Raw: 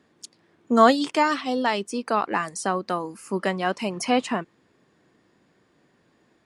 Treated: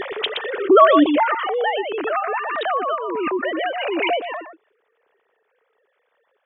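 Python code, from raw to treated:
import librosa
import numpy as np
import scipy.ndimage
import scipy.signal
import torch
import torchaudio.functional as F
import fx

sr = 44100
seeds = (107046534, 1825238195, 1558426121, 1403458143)

y = fx.sine_speech(x, sr)
y = y + 10.0 ** (-10.0 / 20.0) * np.pad(y, (int(120 * sr / 1000.0), 0))[:len(y)]
y = fx.pre_swell(y, sr, db_per_s=21.0)
y = y * 10.0 ** (1.0 / 20.0)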